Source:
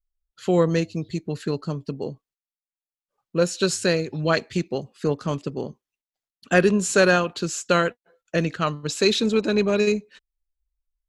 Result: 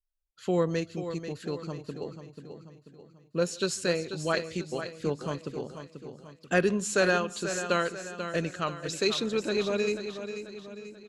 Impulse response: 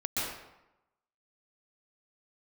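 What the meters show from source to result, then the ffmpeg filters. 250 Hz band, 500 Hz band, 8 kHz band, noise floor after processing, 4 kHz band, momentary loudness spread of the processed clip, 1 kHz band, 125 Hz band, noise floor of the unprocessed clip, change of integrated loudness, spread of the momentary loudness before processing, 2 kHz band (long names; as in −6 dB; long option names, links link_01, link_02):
−8.0 dB, −6.5 dB, −6.0 dB, −62 dBFS, −6.0 dB, 17 LU, −6.0 dB, −8.5 dB, below −85 dBFS, −7.0 dB, 12 LU, −6.0 dB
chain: -filter_complex "[0:a]aecho=1:1:488|976|1464|1952|2440:0.335|0.147|0.0648|0.0285|0.0126,asplit=2[link_01][link_02];[1:a]atrim=start_sample=2205,atrim=end_sample=6174,asetrate=37485,aresample=44100[link_03];[link_02][link_03]afir=irnorm=-1:irlink=0,volume=-27.5dB[link_04];[link_01][link_04]amix=inputs=2:normalize=0,adynamicequalizer=threshold=0.0158:dfrequency=170:dqfactor=1:tfrequency=170:tqfactor=1:attack=5:release=100:ratio=0.375:range=2.5:mode=cutabove:tftype=bell,volume=-7dB"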